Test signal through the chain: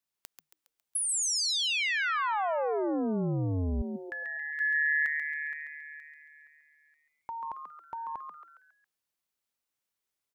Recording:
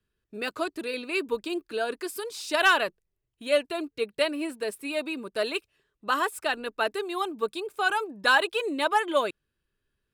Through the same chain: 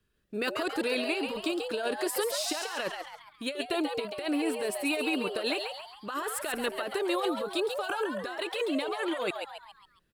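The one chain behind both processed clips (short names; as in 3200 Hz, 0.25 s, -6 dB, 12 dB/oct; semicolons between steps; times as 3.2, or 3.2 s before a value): negative-ratio compressor -32 dBFS, ratio -1; on a send: frequency-shifting echo 0.137 s, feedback 45%, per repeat +150 Hz, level -6 dB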